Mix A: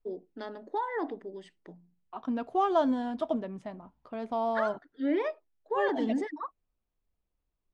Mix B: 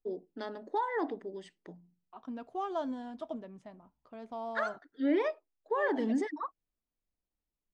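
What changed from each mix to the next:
second voice −9.5 dB
master: add parametric band 6,700 Hz +4 dB 1 octave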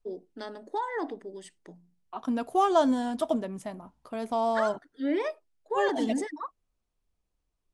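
second voice +12.0 dB
master: remove high-frequency loss of the air 130 metres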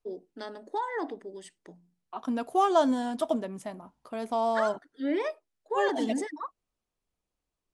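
master: add low-shelf EQ 91 Hz −11 dB

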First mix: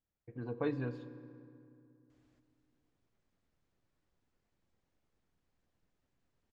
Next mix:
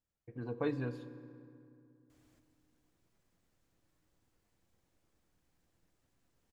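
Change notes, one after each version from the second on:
second voice: send on
master: remove high-frequency loss of the air 81 metres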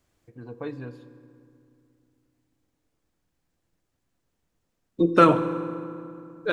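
second voice: entry −2.10 s

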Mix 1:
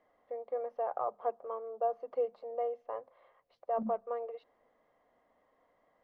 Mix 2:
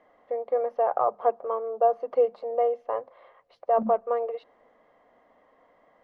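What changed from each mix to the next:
first voice +10.5 dB
second voice +6.5 dB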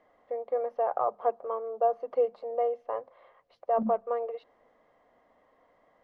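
first voice −4.0 dB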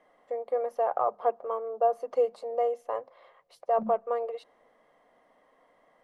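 first voice: remove high-frequency loss of the air 290 metres
second voice: add phaser with its sweep stopped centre 390 Hz, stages 8

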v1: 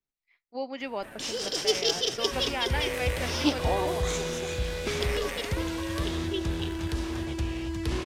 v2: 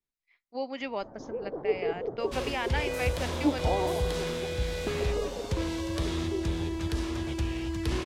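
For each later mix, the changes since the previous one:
first sound: add inverse Chebyshev low-pass filter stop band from 2,500 Hz, stop band 50 dB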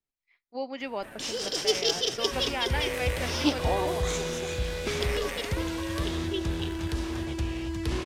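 first sound: remove inverse Chebyshev low-pass filter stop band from 2,500 Hz, stop band 50 dB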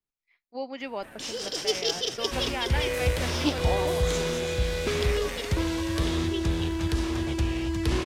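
second sound +4.0 dB
reverb: off

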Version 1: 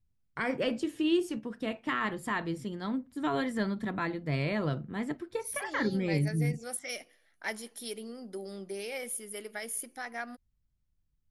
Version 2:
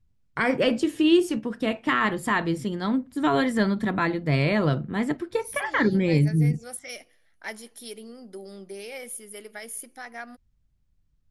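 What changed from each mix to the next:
first voice +8.5 dB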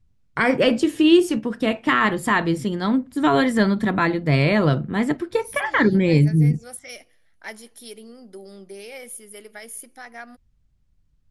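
first voice +4.5 dB

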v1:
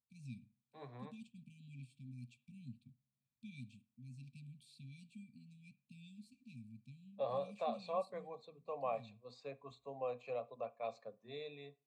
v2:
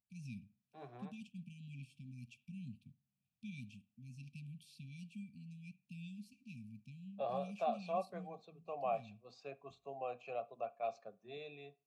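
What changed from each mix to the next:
first voice +4.0 dB
master: remove EQ curve with evenly spaced ripples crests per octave 1, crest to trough 10 dB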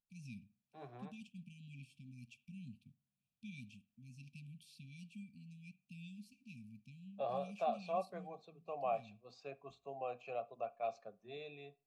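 first voice: add low-shelf EQ 110 Hz −11 dB
master: remove high-pass filter 91 Hz

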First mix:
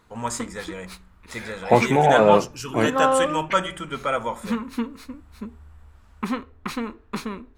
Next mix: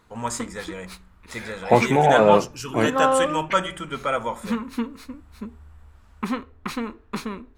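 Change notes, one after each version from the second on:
nothing changed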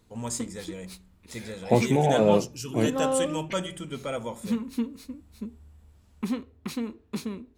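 background: add high-pass filter 86 Hz 12 dB per octave
master: add parametric band 1,300 Hz −14.5 dB 1.9 octaves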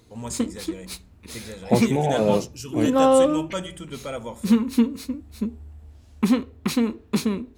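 background +10.0 dB

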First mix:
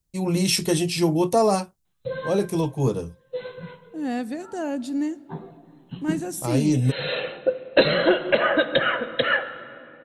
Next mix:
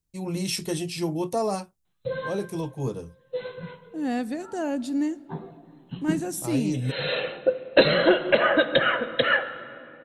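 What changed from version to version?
first voice −7.0 dB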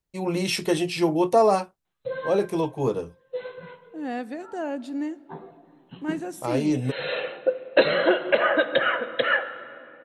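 first voice +9.0 dB
master: add bass and treble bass −11 dB, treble −11 dB

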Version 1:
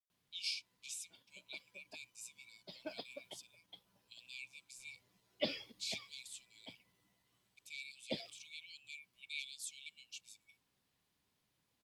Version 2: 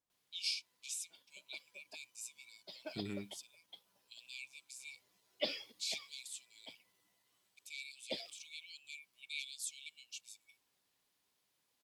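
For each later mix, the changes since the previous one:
second voice: unmuted
master: add bass and treble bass −12 dB, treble +4 dB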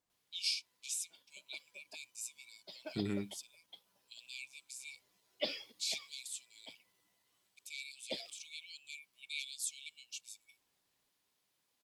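first voice: add high-shelf EQ 4,500 Hz +4.5 dB
second voice +6.0 dB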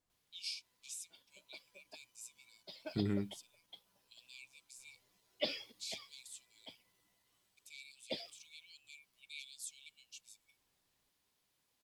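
first voice −7.5 dB
master: add low-shelf EQ 92 Hz +11.5 dB

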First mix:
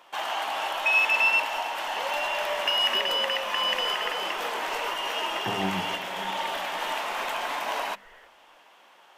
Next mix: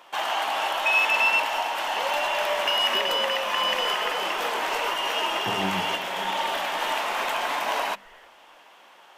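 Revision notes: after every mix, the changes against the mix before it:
first sound +3.5 dB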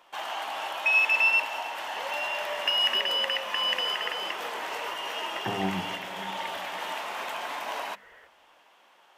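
first sound −7.5 dB
second sound: add high-pass filter 57 Hz

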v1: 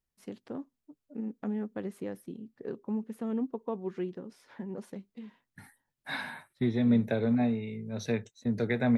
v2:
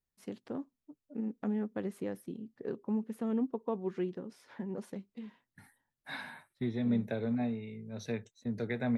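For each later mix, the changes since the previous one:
second voice −6.0 dB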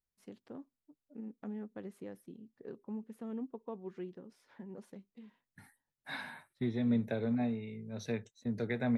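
first voice −8.5 dB

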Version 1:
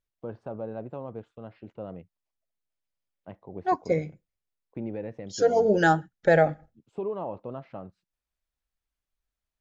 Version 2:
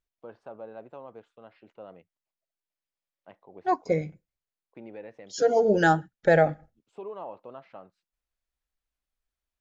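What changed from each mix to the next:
first voice: add high-pass filter 880 Hz 6 dB per octave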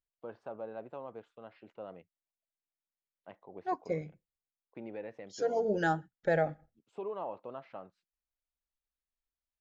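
second voice −9.0 dB
master: add high-shelf EQ 5,900 Hz −4 dB

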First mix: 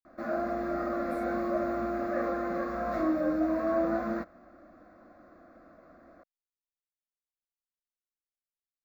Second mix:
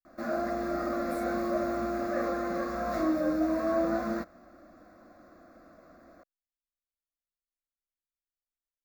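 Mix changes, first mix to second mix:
speech +9.5 dB
background: add bass and treble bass +1 dB, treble +12 dB

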